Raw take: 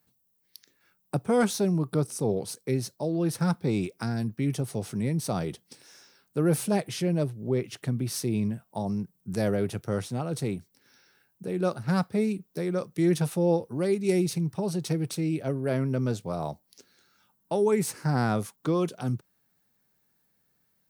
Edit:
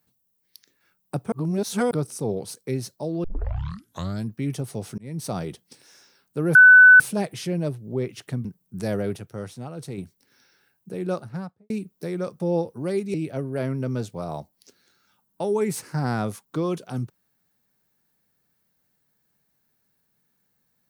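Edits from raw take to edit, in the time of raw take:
1.32–1.91 reverse
3.24 tape start 1.02 s
4.98–5.25 fade in
6.55 add tone 1500 Hz -6.5 dBFS 0.45 s
8–8.99 cut
9.71–10.52 gain -5 dB
11.58–12.24 studio fade out
12.94–13.35 cut
14.09–15.25 cut

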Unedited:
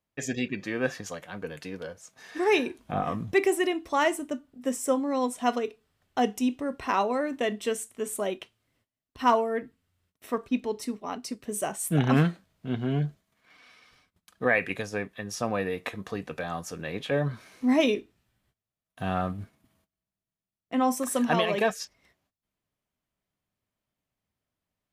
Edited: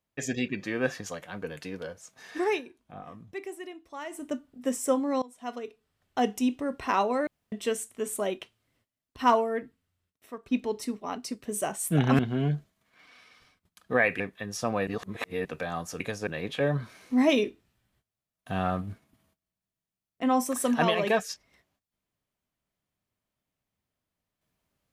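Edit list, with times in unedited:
2.4–4.31 dip -15 dB, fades 0.22 s
5.22–6.35 fade in, from -23.5 dB
7.27–7.52 room tone
9.39–10.46 fade out, to -14.5 dB
12.19–12.7 cut
14.71–14.98 move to 16.78
15.65–16.23 reverse

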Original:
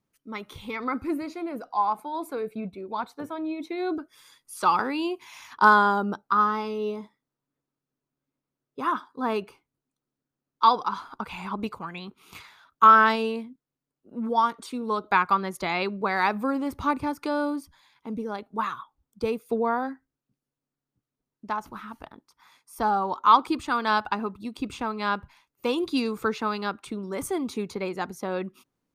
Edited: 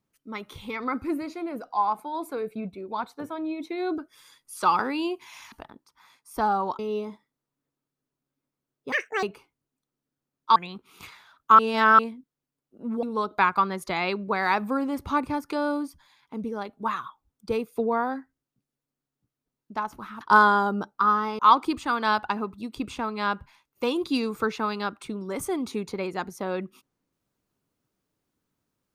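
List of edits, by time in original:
5.52–6.7 swap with 21.94–23.21
8.83–9.36 speed 172%
10.69–11.88 cut
12.91–13.31 reverse
14.35–14.76 cut

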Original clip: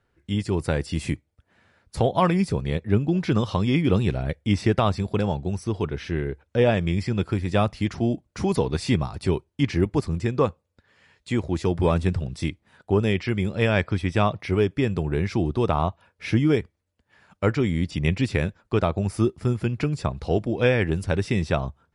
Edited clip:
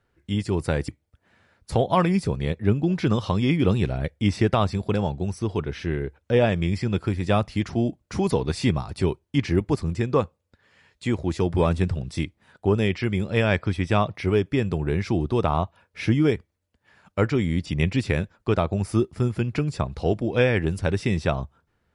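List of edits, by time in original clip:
0.88–1.13 cut

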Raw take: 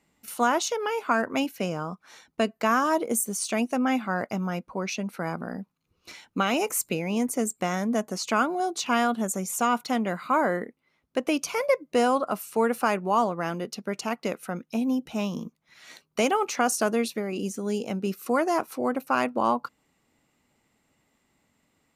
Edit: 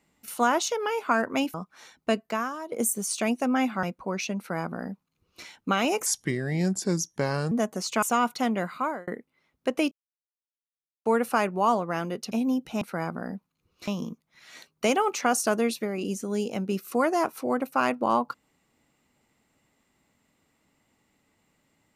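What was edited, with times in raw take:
1.54–1.85 cut
2.5–3.03 fade out quadratic, to -15 dB
4.14–4.52 cut
5.07–6.13 copy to 15.22
6.75–7.87 speed 77%
8.38–9.52 cut
10.16–10.57 fade out
11.41–12.55 mute
13.81–14.72 cut

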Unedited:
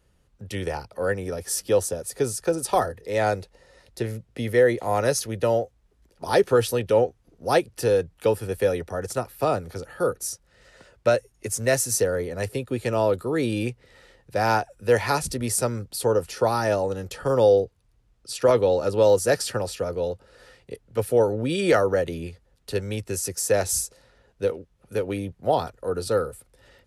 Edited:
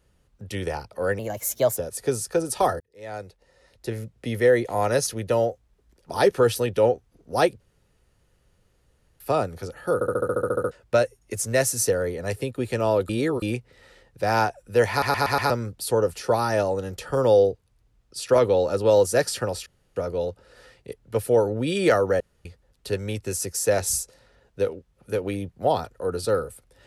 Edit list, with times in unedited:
1.19–1.9 speed 122%
2.93–4.31 fade in
7.73–9.33 room tone
10.07 stutter in place 0.07 s, 11 plays
13.22–13.55 reverse
15.03 stutter in place 0.12 s, 5 plays
19.79 insert room tone 0.30 s
22.03–22.28 room tone

